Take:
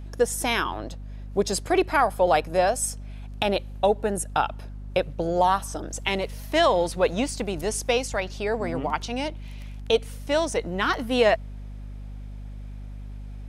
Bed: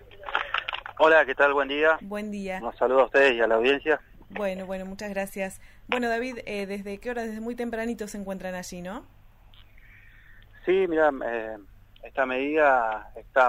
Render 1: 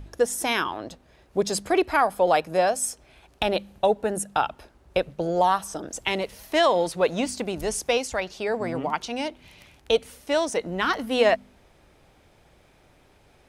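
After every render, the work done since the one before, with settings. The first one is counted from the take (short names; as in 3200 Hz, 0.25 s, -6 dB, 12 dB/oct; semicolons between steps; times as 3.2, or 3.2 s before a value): de-hum 50 Hz, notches 5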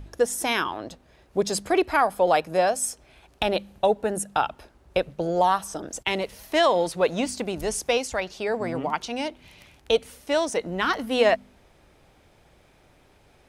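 5.82–6.23 gate -46 dBFS, range -22 dB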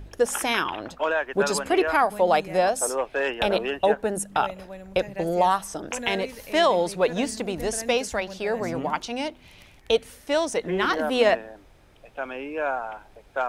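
add bed -7 dB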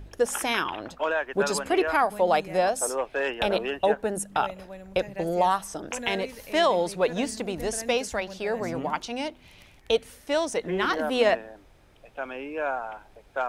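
gain -2 dB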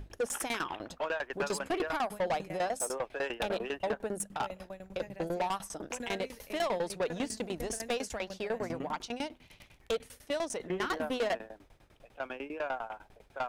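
tremolo saw down 10 Hz, depth 95%; soft clip -26.5 dBFS, distortion -8 dB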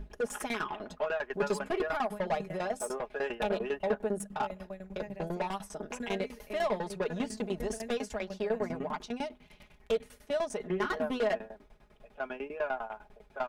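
high shelf 2800 Hz -8.5 dB; comb 4.8 ms, depth 73%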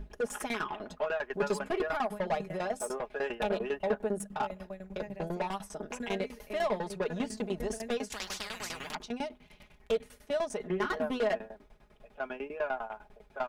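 8.12–8.95 spectral compressor 10:1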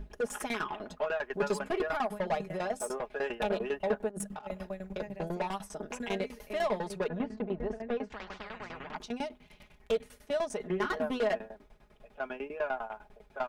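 4.09–4.93 negative-ratio compressor -38 dBFS, ratio -0.5; 7.08–8.96 LPF 1800 Hz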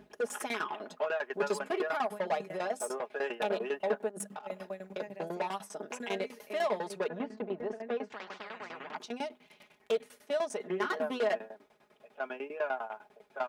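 HPF 270 Hz 12 dB/oct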